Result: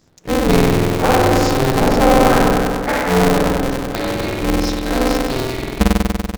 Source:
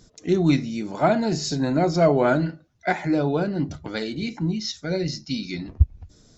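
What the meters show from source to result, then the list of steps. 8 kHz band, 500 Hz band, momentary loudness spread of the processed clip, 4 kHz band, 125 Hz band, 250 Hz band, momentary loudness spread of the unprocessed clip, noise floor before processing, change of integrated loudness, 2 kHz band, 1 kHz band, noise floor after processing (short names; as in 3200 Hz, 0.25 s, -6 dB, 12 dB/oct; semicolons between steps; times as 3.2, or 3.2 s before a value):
n/a, +7.5 dB, 8 LU, +8.5 dB, +5.5 dB, +6.5 dB, 11 LU, -56 dBFS, +7.5 dB, +10.0 dB, +11.0 dB, -32 dBFS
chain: spring tank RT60 2.2 s, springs 48 ms, chirp 50 ms, DRR -5 dB; sample leveller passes 1; polarity switched at an audio rate 130 Hz; gain -3 dB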